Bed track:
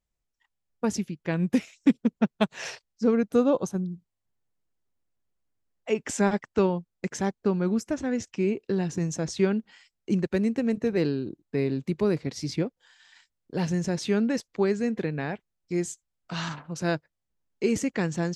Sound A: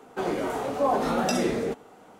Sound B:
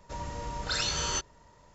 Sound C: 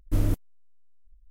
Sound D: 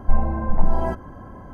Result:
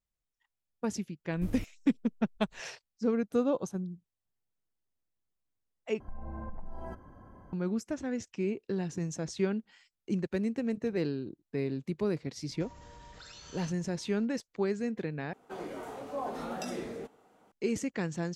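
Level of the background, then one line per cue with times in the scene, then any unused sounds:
bed track −6.5 dB
0:01.30: mix in C −5.5 dB + downward compressor 2.5 to 1, threshold −33 dBFS
0:06.00: overwrite with D −13.5 dB + downward compressor 10 to 1, threshold −21 dBFS
0:12.51: mix in B −6 dB + downward compressor, threshold −42 dBFS
0:15.33: overwrite with A −12.5 dB

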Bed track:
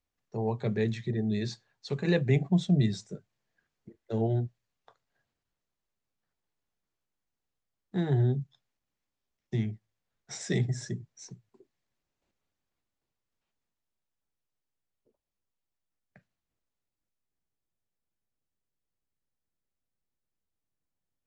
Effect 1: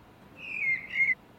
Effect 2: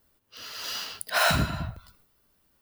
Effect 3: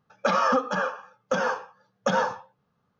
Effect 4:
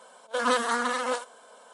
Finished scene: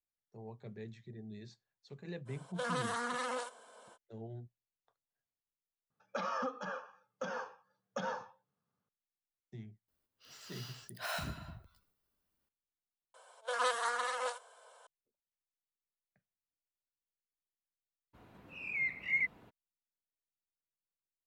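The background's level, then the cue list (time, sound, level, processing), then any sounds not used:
bed track −18.5 dB
0:02.25: mix in 4 −6 dB, fades 0.05 s + downward compressor 4 to 1, threshold −27 dBFS
0:05.90: overwrite with 3 −15 dB + high-pass filter 80 Hz
0:09.88: mix in 2 −16.5 dB
0:13.14: overwrite with 4 −7.5 dB + high-pass filter 460 Hz 24 dB per octave
0:18.13: mix in 1 −5 dB, fades 0.02 s + high-shelf EQ 3,000 Hz −4.5 dB

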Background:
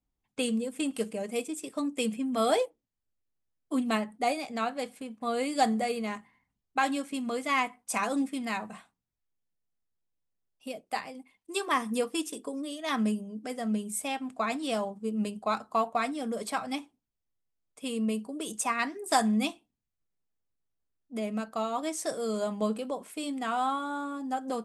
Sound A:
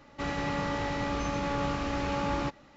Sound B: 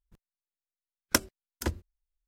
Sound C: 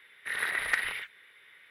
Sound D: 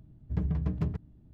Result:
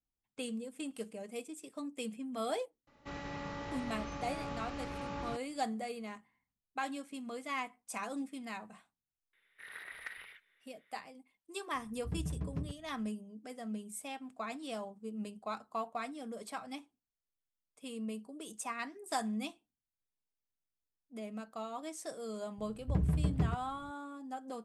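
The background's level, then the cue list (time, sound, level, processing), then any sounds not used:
background −10.5 dB
0:02.87: mix in A −11 dB
0:09.33: mix in C −17 dB
0:11.75: mix in D −8.5 dB
0:22.58: mix in D −1 dB
not used: B

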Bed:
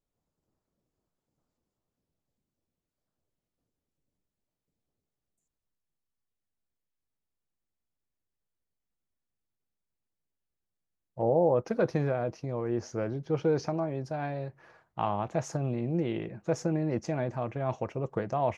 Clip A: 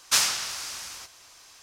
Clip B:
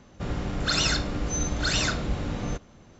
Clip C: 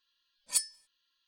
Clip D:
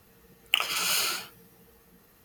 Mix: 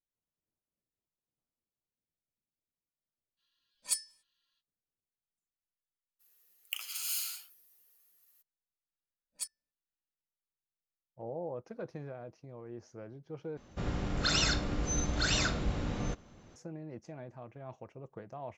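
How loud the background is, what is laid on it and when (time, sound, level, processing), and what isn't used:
bed −15 dB
0:03.36: mix in C −3.5 dB, fades 0.05 s
0:06.19: mix in D −7.5 dB, fades 0.02 s + first difference
0:08.86: mix in C −10.5 dB + adaptive Wiener filter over 41 samples
0:13.57: overwrite with B −4.5 dB
not used: A

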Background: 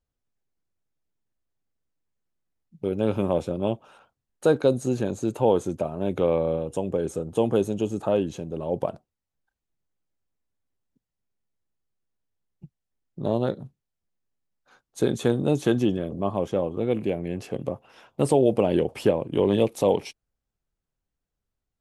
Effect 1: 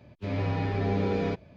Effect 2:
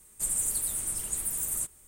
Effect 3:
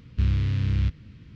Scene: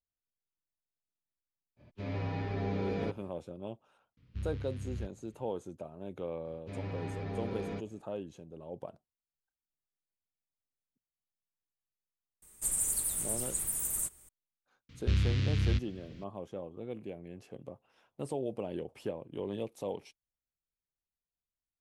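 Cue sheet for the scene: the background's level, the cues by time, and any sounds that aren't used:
background −16.5 dB
0:01.76: mix in 1 −7 dB, fades 0.05 s
0:04.17: mix in 3 −16 dB
0:06.45: mix in 1 −9.5 dB + soft clipping −21.5 dBFS
0:12.42: mix in 2 −2.5 dB
0:14.89: mix in 3 −5.5 dB + high-shelf EQ 2,100 Hz +11 dB

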